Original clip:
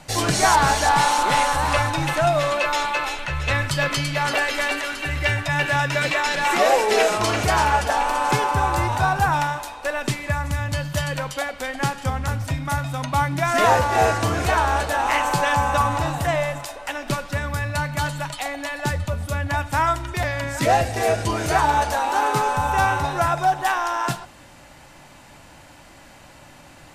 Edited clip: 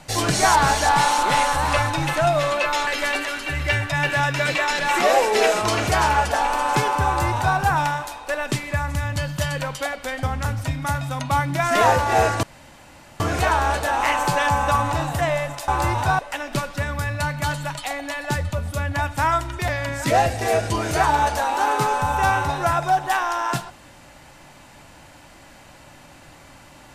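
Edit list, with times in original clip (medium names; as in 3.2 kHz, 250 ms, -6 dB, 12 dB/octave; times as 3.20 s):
2.87–4.43 s: delete
8.62–9.13 s: copy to 16.74 s
11.79–12.06 s: delete
14.26 s: insert room tone 0.77 s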